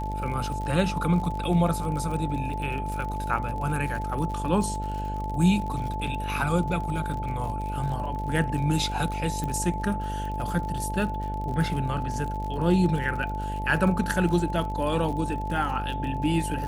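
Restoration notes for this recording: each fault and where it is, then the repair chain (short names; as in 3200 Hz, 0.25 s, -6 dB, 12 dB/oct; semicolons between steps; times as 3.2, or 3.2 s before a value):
buzz 50 Hz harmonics 17 -32 dBFS
crackle 57/s -33 dBFS
tone 870 Hz -32 dBFS
9.44 pop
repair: de-click; notch 870 Hz, Q 30; de-hum 50 Hz, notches 17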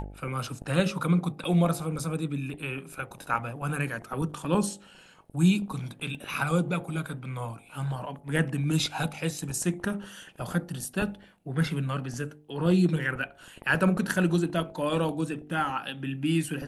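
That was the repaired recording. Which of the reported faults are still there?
none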